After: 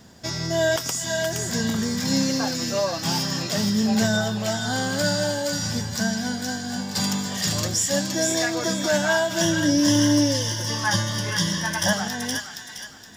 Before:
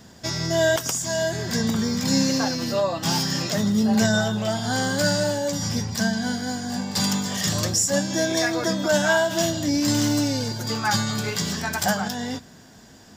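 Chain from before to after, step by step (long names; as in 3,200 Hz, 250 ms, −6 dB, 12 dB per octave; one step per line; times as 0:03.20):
0:09.41–0:11.93: EQ curve with evenly spaced ripples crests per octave 1.2, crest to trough 15 dB
bit-depth reduction 12 bits, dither triangular
delay with a high-pass on its return 469 ms, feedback 35%, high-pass 1,600 Hz, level −3 dB
level −1.5 dB
Ogg Vorbis 128 kbit/s 48,000 Hz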